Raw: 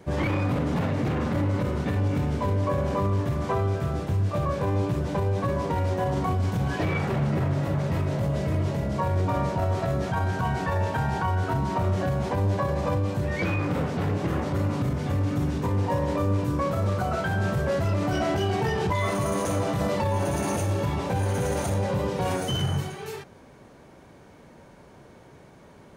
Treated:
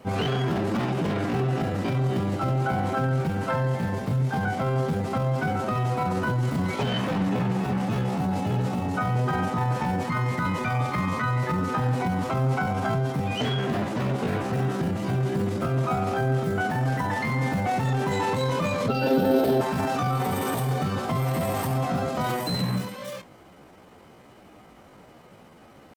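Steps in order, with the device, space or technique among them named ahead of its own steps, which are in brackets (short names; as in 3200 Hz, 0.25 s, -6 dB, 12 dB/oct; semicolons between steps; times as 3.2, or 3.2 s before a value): chipmunk voice (pitch shift +5 st); 18.88–19.61 graphic EQ 125/250/500/1000/2000/4000/8000 Hz -5/+8/+11/-7/-6/+8/-12 dB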